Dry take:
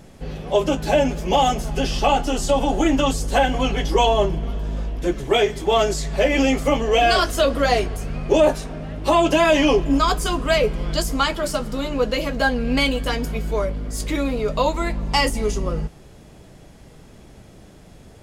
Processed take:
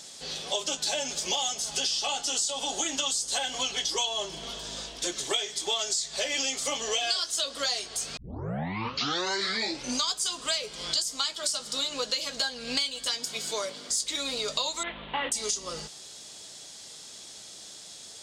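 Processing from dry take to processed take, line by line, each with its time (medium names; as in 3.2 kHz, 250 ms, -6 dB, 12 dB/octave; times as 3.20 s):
8.17 s: tape start 1.94 s
13.07–13.89 s: high-pass 77 Hz -> 230 Hz
14.83–15.32 s: CVSD coder 16 kbps
whole clip: high-pass 1.4 kHz 6 dB/octave; high-order bell 5.5 kHz +15 dB; compression 6:1, threshold -28 dBFS; trim +1 dB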